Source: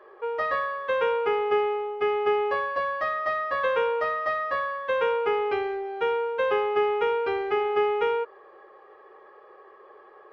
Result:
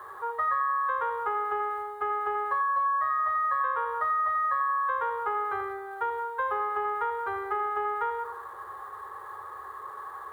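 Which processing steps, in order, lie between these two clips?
converter with a step at zero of −41.5 dBFS
drawn EQ curve 100 Hz 0 dB, 190 Hz −19 dB, 410 Hz −10 dB, 620 Hz −11 dB, 1,000 Hz +7 dB, 1,800 Hz −1 dB, 2,500 Hz −21 dB, 3,700 Hz −12 dB, 5,400 Hz −21 dB, 9,900 Hz −6 dB
on a send: bucket-brigade delay 87 ms, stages 1,024, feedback 54%, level −6.5 dB
on the sum: downward compressor 5 to 1, threshold −25 dBFS, peak gain reduction 8 dB
high-pass filter 63 Hz

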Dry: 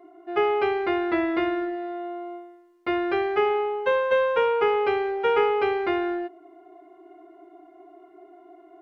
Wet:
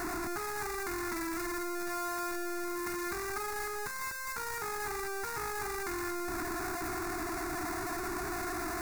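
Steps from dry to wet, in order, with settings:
sign of each sample alone
phaser with its sweep stopped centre 1,300 Hz, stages 4
level −5.5 dB

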